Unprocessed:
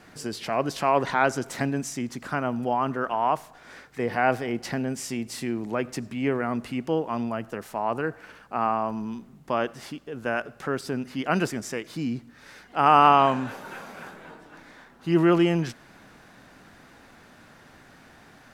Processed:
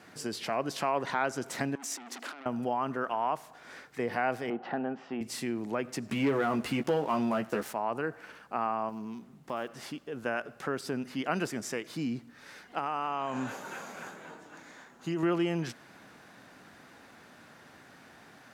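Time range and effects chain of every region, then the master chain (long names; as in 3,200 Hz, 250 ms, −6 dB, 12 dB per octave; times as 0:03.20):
0:01.75–0:02.46: Butterworth high-pass 240 Hz 48 dB per octave + compressor whose output falls as the input rises −37 dBFS + saturating transformer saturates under 3,800 Hz
0:04.50–0:05.21: hard clipping −19 dBFS + loudspeaker in its box 210–2,700 Hz, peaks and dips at 780 Hz +10 dB, 1,300 Hz +4 dB, 2,200 Hz −10 dB
0:06.08–0:07.73: double-tracking delay 14 ms −6 dB + leveller curve on the samples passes 2
0:08.89–0:09.77: one scale factor per block 7 bits + downward compressor 1.5 to 1, threshold −38 dBFS + highs frequency-modulated by the lows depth 0.1 ms
0:12.78–0:15.23: high-pass filter 51 Hz + parametric band 6,800 Hz +12 dB 0.23 octaves + downward compressor, threshold −24 dBFS
whole clip: high-pass filter 55 Hz; low-shelf EQ 88 Hz −10.5 dB; downward compressor 2 to 1, threshold −27 dBFS; level −2 dB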